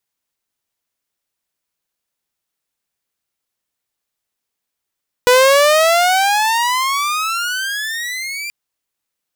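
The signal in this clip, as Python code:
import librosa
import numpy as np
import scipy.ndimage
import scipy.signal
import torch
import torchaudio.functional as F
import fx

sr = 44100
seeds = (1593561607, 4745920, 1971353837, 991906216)

y = fx.riser_tone(sr, length_s=3.23, level_db=-4.5, wave='saw', hz=489.0, rise_st=27.5, swell_db=-16.0)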